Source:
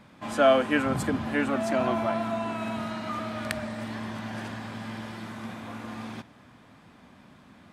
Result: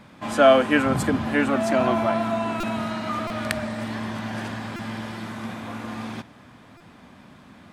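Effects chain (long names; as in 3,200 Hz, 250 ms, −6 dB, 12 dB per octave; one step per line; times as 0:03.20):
buffer that repeats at 0:02.60/0:03.27/0:04.76/0:06.77, samples 128, times 10
level +5 dB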